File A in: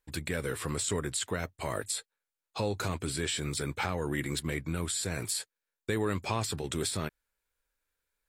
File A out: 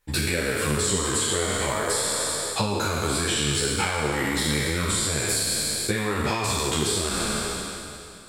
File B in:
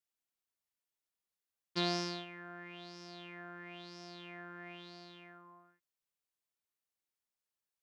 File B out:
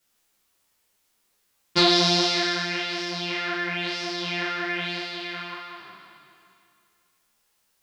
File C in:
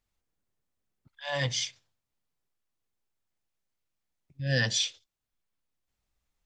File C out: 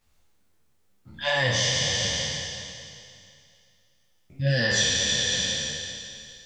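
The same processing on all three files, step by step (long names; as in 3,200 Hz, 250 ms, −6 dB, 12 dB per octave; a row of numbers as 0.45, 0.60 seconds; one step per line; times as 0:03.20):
peak hold with a decay on every bin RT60 2.52 s
downward compressor 5 to 1, threshold −32 dBFS
string-ensemble chorus
loudness normalisation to −24 LKFS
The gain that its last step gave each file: +13.5, +21.5, +14.0 decibels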